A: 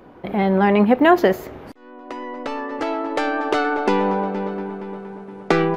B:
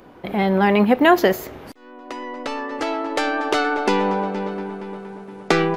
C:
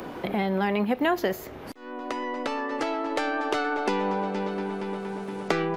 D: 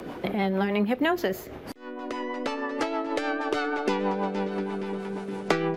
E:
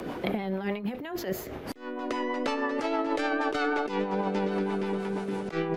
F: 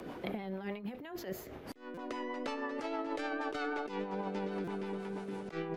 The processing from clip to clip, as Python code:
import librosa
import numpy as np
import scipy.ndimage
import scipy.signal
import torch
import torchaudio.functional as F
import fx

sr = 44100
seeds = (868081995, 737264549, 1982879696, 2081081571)

y1 = fx.high_shelf(x, sr, hz=2900.0, db=9.5)
y1 = y1 * 10.0 ** (-1.0 / 20.0)
y2 = fx.band_squash(y1, sr, depth_pct=70)
y2 = y2 * 10.0 ** (-7.5 / 20.0)
y3 = fx.rotary(y2, sr, hz=6.3)
y3 = y3 * 10.0 ** (2.0 / 20.0)
y4 = fx.over_compress(y3, sr, threshold_db=-28.0, ratio=-0.5)
y5 = fx.buffer_glitch(y4, sr, at_s=(1.94, 4.64), block=256, repeats=5)
y5 = y5 * 10.0 ** (-9.0 / 20.0)